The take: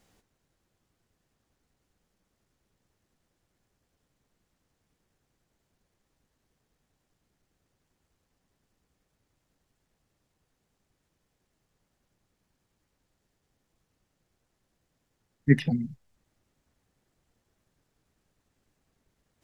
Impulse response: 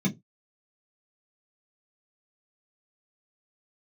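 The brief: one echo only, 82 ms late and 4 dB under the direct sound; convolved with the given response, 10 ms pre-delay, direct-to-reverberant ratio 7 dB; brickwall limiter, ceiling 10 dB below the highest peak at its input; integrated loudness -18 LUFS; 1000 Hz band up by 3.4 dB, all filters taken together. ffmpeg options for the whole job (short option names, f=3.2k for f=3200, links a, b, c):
-filter_complex "[0:a]equalizer=f=1k:t=o:g=5.5,alimiter=limit=-15.5dB:level=0:latency=1,aecho=1:1:82:0.631,asplit=2[a][b];[1:a]atrim=start_sample=2205,adelay=10[c];[b][c]afir=irnorm=-1:irlink=0,volume=-13.5dB[d];[a][d]amix=inputs=2:normalize=0,volume=2dB"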